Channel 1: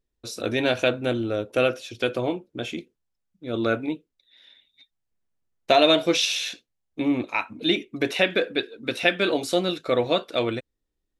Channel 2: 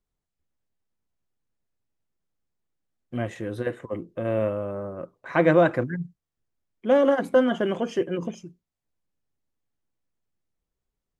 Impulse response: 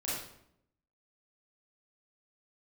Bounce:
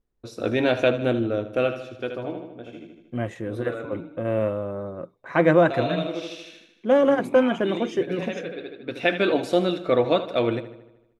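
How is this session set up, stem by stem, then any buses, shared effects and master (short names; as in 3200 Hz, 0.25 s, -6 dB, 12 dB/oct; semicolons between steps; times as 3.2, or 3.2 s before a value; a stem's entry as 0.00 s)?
+2.5 dB, 0.00 s, no send, echo send -13.5 dB, high shelf 3100 Hz -12 dB; auto duck -15 dB, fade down 1.95 s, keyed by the second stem
+1.0 dB, 0.00 s, no send, no echo send, dry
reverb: off
echo: feedback echo 77 ms, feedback 58%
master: mismatched tape noise reduction decoder only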